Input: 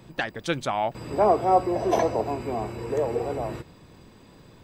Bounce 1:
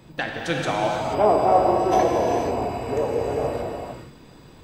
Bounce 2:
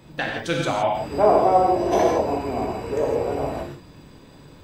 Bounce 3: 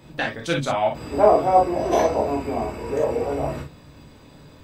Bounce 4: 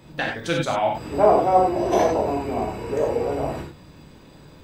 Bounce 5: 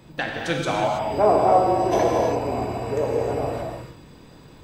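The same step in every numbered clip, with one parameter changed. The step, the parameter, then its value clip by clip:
non-linear reverb, gate: 510, 190, 80, 120, 350 ms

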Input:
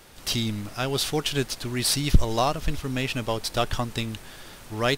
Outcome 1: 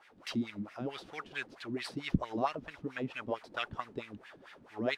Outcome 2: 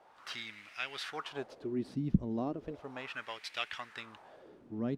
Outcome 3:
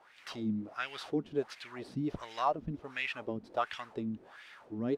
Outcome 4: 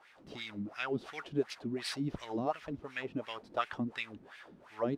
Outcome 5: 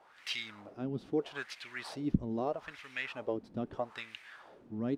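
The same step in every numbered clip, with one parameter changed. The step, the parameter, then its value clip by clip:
wah, rate: 4.5, 0.35, 1.4, 2.8, 0.78 Hz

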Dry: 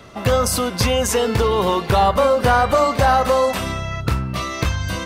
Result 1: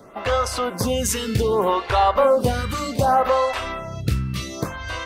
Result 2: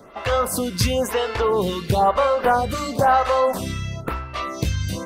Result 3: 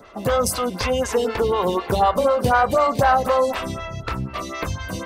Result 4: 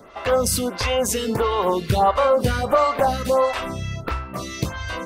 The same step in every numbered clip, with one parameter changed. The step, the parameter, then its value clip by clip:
photocell phaser, rate: 0.65, 1, 4, 1.5 Hz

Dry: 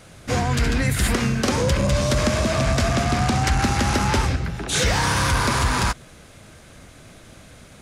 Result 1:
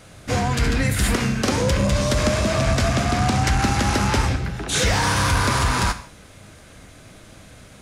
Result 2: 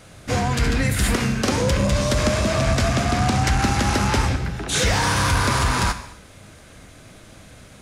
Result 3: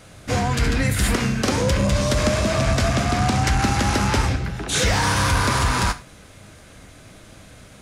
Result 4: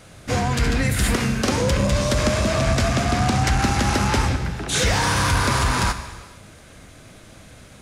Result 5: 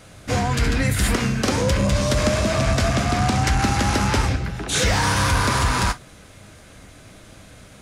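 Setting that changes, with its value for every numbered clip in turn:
non-linear reverb, gate: 200, 300, 130, 520, 80 ms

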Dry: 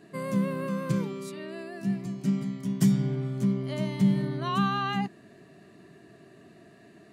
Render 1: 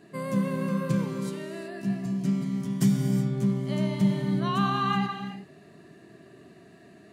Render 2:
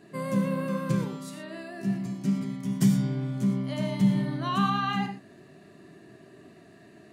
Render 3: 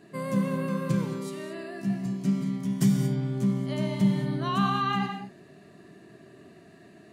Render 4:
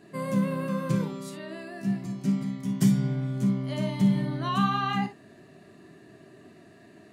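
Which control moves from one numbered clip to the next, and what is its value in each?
non-linear reverb, gate: 400, 140, 250, 80 ms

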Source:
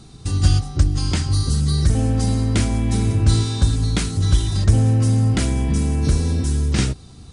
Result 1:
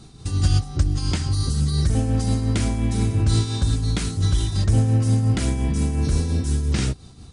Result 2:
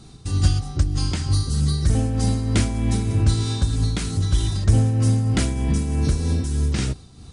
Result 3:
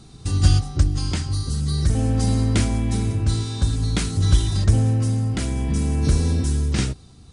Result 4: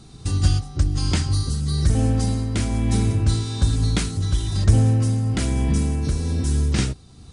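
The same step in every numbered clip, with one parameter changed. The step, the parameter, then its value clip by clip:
tremolo, rate: 5.7, 3.2, 0.52, 1.1 Hz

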